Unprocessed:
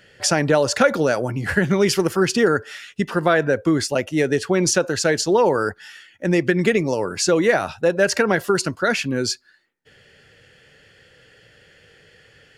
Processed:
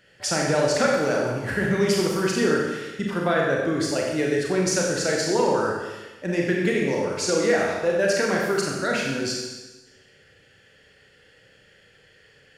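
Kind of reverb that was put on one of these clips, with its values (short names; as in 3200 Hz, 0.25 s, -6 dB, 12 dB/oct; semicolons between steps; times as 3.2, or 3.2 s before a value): Schroeder reverb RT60 1.2 s, combs from 29 ms, DRR -2 dB; gain -7.5 dB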